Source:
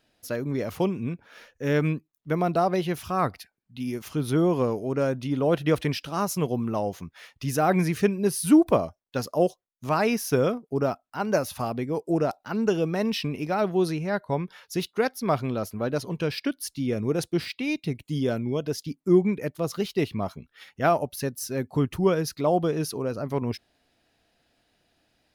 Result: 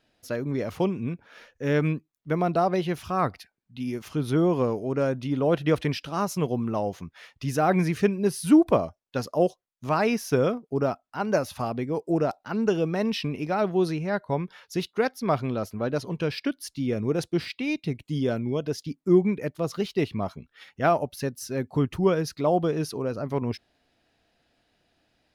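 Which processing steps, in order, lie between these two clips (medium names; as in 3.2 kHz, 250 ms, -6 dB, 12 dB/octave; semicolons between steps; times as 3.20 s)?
treble shelf 9.6 kHz -11 dB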